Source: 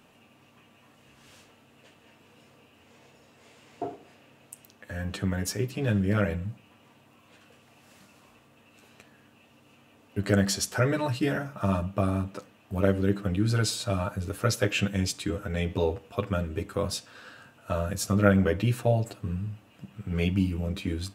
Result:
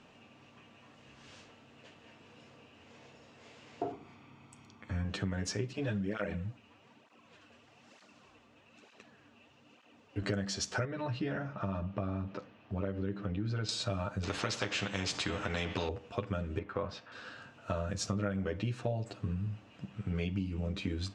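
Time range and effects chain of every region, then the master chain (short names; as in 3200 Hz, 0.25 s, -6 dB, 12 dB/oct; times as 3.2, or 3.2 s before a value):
3.92–5.05 high shelf 3100 Hz -7.5 dB + comb 0.9 ms
5.73–10.22 bell 120 Hz -5.5 dB 0.8 oct + tape flanging out of phase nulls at 1.1 Hz, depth 6.6 ms
10.85–13.69 compressor 1.5:1, threshold -37 dBFS + air absorption 150 m
14.23–15.89 air absorption 74 m + notch 5700 Hz, Q 22 + spectral compressor 2:1
16.59–17.12 block floating point 7-bit + LPF 1600 Hz + tilt shelf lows -6 dB, about 690 Hz
whole clip: LPF 6700 Hz 24 dB/oct; compressor 6:1, threshold -31 dBFS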